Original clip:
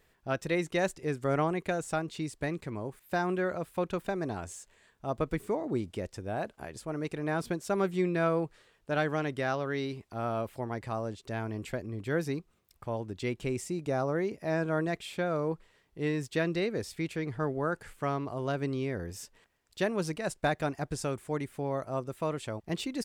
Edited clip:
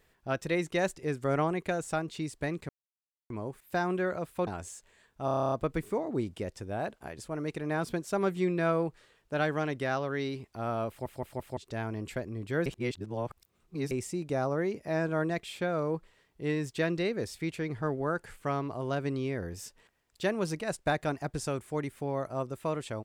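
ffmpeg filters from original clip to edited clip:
-filter_complex "[0:a]asplit=18[a][b][c][d][e][f][g][h][i][j][k][l][m][n][o][p][q][r];[a]atrim=end=2.69,asetpts=PTS-STARTPTS,afade=t=out:st=2.686:d=0.004:c=hsin,apad=pad_dur=0.61[s];[b]atrim=start=2.69:end=3.862,asetpts=PTS-STARTPTS,afade=t=in:d=0.004:c=hsin[t];[c]atrim=start=4.308:end=5.122[u];[d]atrim=start=5.088:end=5.122[v];[e]atrim=start=5.088:end=5.122[w];[f]atrim=start=5.088:end=5.122[x];[g]atrim=start=5.088:end=5.122[y];[h]atrim=start=5.088:end=5.122[z];[i]atrim=start=5.088:end=5.122[aa];[j]atrim=start=5.088:end=5.122[ab];[k]atrim=start=5.088:end=5.122[ac];[l]atrim=start=5.088:end=10.632[ad];[m]atrim=start=10.458:end=10.632[ae];[n]atrim=start=10.458:end=10.632[af];[o]atrim=start=10.458:end=10.632[ag];[p]atrim=start=11.138:end=12.232[ah];[q]atrim=start=12.228:end=13.482,asetpts=PTS-STARTPTS,areverse[ai];[r]atrim=start=13.478[aj];[s][t]concat=n=2:v=0:a=1[ak];[ak][u]acrossfade=d=0.004:c1=hsin:c2=hsin[al];[al][v]acrossfade=d=0.004:c1=hsin:c2=hsin[am];[am][w]acrossfade=d=0.004:c1=hsin:c2=hsin[an];[an][x]acrossfade=d=0.004:c1=hsin:c2=hsin[ao];[ao][y]acrossfade=d=0.004:c1=hsin:c2=hsin[ap];[ap][z]acrossfade=d=0.004:c1=hsin:c2=hsin[aq];[aq][aa]acrossfade=d=0.004:c1=hsin:c2=hsin[ar];[ar][ab]acrossfade=d=0.004:c1=hsin:c2=hsin[as];[as][ac]acrossfade=d=0.004:c1=hsin:c2=hsin[at];[at][ad]acrossfade=d=0.004:c1=hsin:c2=hsin[au];[au][ae]acrossfade=d=0.004:c1=hsin:c2=hsin[av];[av][af]acrossfade=d=0.004:c1=hsin:c2=hsin[aw];[aw][ag]acrossfade=d=0.004:c1=hsin:c2=hsin[ax];[ax][ah]acrossfade=d=0.004:c1=hsin:c2=hsin[ay];[ay][ai]acrossfade=d=0.004:c1=hsin:c2=hsin[az];[az][aj]acrossfade=d=0.004:c1=hsin:c2=hsin"

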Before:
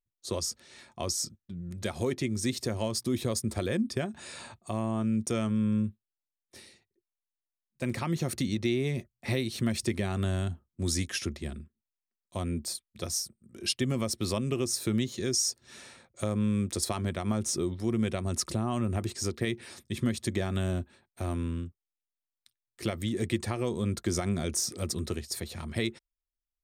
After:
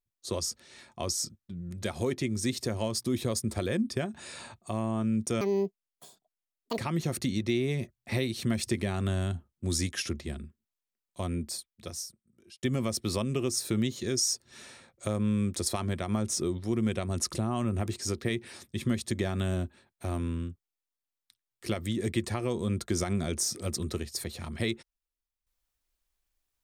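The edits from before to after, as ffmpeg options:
-filter_complex "[0:a]asplit=4[a][b][c][d];[a]atrim=end=5.414[e];[b]atrim=start=5.41:end=7.94,asetpts=PTS-STARTPTS,asetrate=81585,aresample=44100[f];[c]atrim=start=7.936:end=13.79,asetpts=PTS-STARTPTS,afade=t=out:st=4.544:d=1.31[g];[d]atrim=start=13.79,asetpts=PTS-STARTPTS,afade=t=in:d=0.004:c=hsin[h];[e][f]acrossfade=d=0.004:c1=hsin:c2=hsin[i];[g][h]concat=n=2:v=0:a=1[j];[i][j]acrossfade=d=0.004:c1=hsin:c2=hsin"

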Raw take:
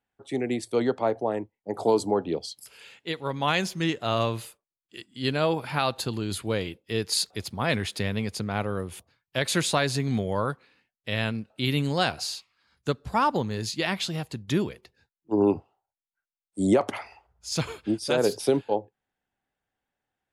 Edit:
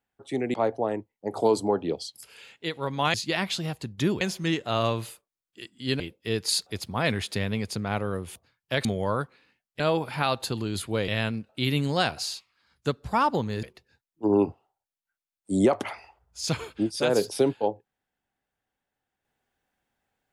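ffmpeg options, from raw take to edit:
-filter_complex "[0:a]asplit=9[a][b][c][d][e][f][g][h][i];[a]atrim=end=0.542[j];[b]atrim=start=0.968:end=3.572[k];[c]atrim=start=13.638:end=14.712[l];[d]atrim=start=3.568:end=5.362[m];[e]atrim=start=6.638:end=9.492[n];[f]atrim=start=10.138:end=11.092[o];[g]atrim=start=5.358:end=6.642[p];[h]atrim=start=11.088:end=13.642[q];[i]atrim=start=14.708[r];[j][k]acrossfade=d=0.004:c1=hsin:c2=hsin[s];[s][l]acrossfade=d=0.004:c1=hsin:c2=hsin[t];[t][m]acrossfade=d=0.004:c1=hsin:c2=hsin[u];[u][n]acrossfade=d=0.004:c1=hsin:c2=hsin[v];[v][o]acrossfade=d=0.004:c1=hsin:c2=hsin[w];[w][p]acrossfade=d=0.004:c1=hsin:c2=hsin[x];[x][q]acrossfade=d=0.004:c1=hsin:c2=hsin[y];[y][r]acrossfade=d=0.004:c1=hsin:c2=hsin"

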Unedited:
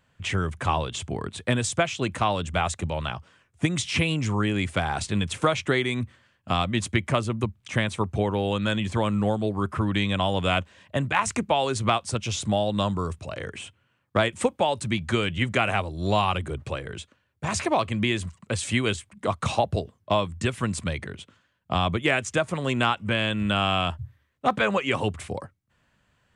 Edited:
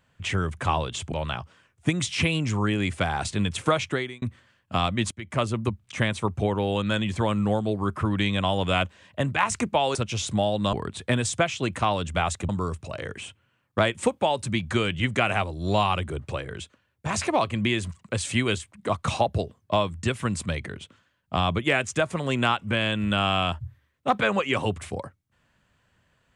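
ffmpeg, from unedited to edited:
-filter_complex "[0:a]asplit=7[a][b][c][d][e][f][g];[a]atrim=end=1.122[h];[b]atrim=start=2.878:end=5.98,asetpts=PTS-STARTPTS,afade=t=out:st=2.702:d=0.4[i];[c]atrim=start=5.98:end=6.87,asetpts=PTS-STARTPTS,afade=t=in:d=0.004:c=hsin,afade=t=out:st=0.886:d=0.004:c=hsin:silence=0.112202[j];[d]atrim=start=6.87:end=11.712,asetpts=PTS-STARTPTS,afade=t=in:d=0.31:c=qua:silence=0.112202[k];[e]atrim=start=12.088:end=12.872[l];[f]atrim=start=1.118:end=2.882[m];[g]atrim=start=12.868[n];[i][j][k]concat=n=3:v=0:a=1[o];[h][o]acrossfade=d=0.004:c1=hsin:c2=hsin[p];[p][l]acrossfade=d=0.004:c1=hsin:c2=hsin[q];[q][m]acrossfade=d=0.004:c1=hsin:c2=hsin[r];[r][n]acrossfade=d=0.004:c1=hsin:c2=hsin"

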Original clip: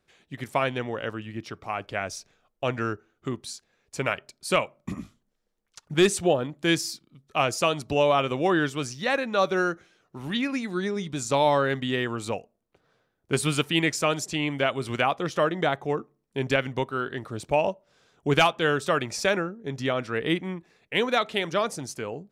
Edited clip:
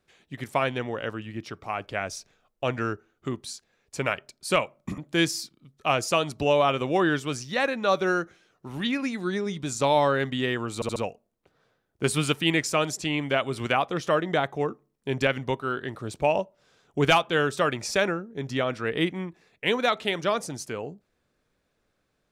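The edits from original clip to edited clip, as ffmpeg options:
-filter_complex "[0:a]asplit=5[a][b][c][d][e];[a]atrim=end=4.982[f];[b]atrim=start=6.478:end=12.322[g];[c]atrim=start=12.248:end=12.322[h];[d]atrim=start=12.248:end=12.322[i];[e]atrim=start=12.248[j];[f][g]acrossfade=d=0.004:c1=hsin:c2=hsin[k];[k][h]acrossfade=d=0.004:c1=hsin:c2=hsin[l];[l][i]acrossfade=d=0.004:c1=hsin:c2=hsin[m];[m][j]acrossfade=d=0.004:c1=hsin:c2=hsin"

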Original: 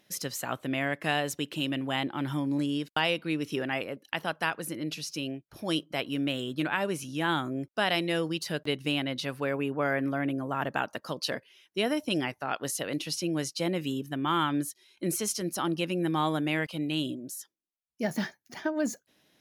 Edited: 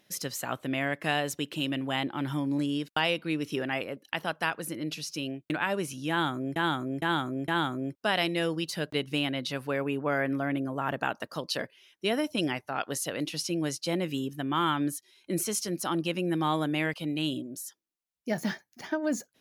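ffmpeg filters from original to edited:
-filter_complex "[0:a]asplit=5[a][b][c][d][e];[a]atrim=end=5.502[f];[b]atrim=start=6.608:end=7.672[g];[c]atrim=start=7.208:end=7.672[h];[d]atrim=start=7.208:end=7.672[i];[e]atrim=start=7.208[j];[f][g]acrossfade=d=0.004:c1=hsin:c2=hsin[k];[k][h]acrossfade=d=0.004:c1=hsin:c2=hsin[l];[l][i]acrossfade=d=0.004:c1=hsin:c2=hsin[m];[m][j]acrossfade=d=0.004:c1=hsin:c2=hsin"

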